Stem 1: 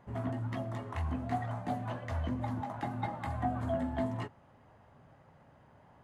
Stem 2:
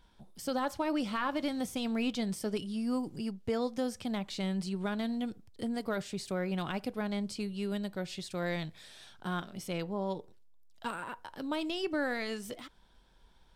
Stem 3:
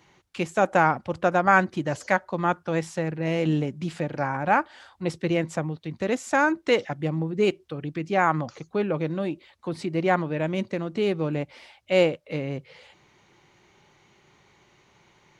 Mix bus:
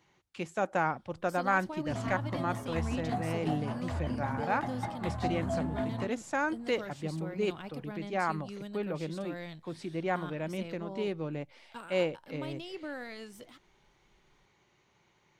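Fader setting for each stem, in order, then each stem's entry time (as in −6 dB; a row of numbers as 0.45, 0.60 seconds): −0.5, −8.0, −9.5 decibels; 1.80, 0.90, 0.00 seconds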